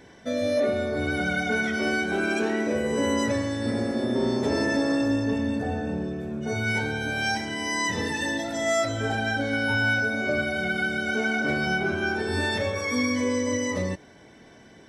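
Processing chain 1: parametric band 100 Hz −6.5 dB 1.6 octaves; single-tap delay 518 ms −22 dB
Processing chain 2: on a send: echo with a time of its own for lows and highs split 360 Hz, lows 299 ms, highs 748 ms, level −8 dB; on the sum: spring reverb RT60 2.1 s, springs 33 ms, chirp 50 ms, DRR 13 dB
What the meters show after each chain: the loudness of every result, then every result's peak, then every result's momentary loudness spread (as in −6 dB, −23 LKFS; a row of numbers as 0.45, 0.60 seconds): −26.5, −25.0 LKFS; −15.0, −12.0 dBFS; 4, 5 LU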